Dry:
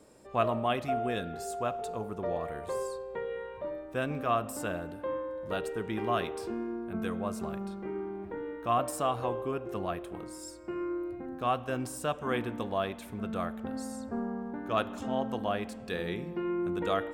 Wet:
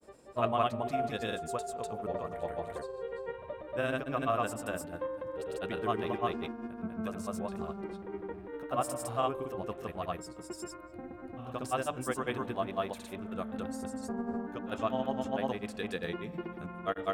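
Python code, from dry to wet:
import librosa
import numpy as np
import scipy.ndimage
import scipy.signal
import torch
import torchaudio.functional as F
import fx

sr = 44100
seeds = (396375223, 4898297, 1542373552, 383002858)

y = fx.hum_notches(x, sr, base_hz=50, count=7)
y = fx.granulator(y, sr, seeds[0], grain_ms=100.0, per_s=20.0, spray_ms=256.0, spread_st=0)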